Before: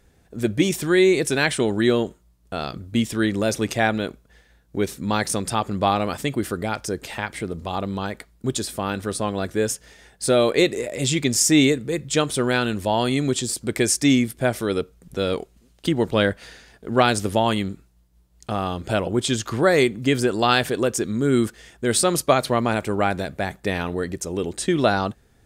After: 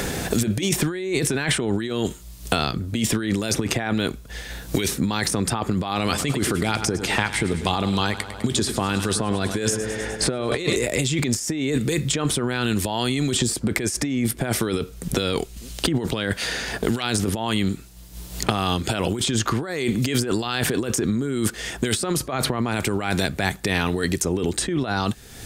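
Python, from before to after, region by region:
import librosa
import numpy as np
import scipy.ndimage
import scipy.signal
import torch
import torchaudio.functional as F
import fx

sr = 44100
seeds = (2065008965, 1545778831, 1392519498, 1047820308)

y = fx.chain(x, sr, fx.lowpass(hz=11000.0, slope=12),
    fx.echo_feedback(ms=101, feedback_pct=56, wet_db=-14.5), at=(5.98, 10.76))
y = fx.over_compress(y, sr, threshold_db=-27.0, ratio=-1.0)
y = fx.dynamic_eq(y, sr, hz=580.0, q=2.8, threshold_db=-41.0, ratio=4.0, max_db=-6)
y = fx.band_squash(y, sr, depth_pct=100)
y = F.gain(torch.from_numpy(y), 3.0).numpy()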